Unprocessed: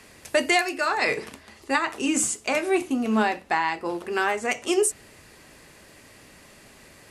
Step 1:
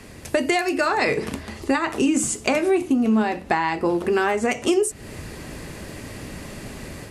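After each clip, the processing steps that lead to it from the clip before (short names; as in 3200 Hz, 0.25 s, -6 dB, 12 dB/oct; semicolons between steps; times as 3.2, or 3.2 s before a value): AGC gain up to 6.5 dB; low shelf 420 Hz +11.5 dB; compressor 4:1, threshold -22 dBFS, peak gain reduction 14 dB; gain +3 dB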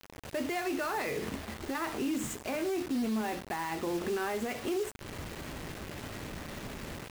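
median filter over 9 samples; limiter -19.5 dBFS, peak gain reduction 10.5 dB; bit-crush 6-bit; gain -6.5 dB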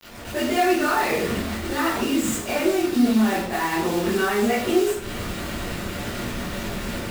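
reverb RT60 0.55 s, pre-delay 13 ms, DRR -10.5 dB; gain +1.5 dB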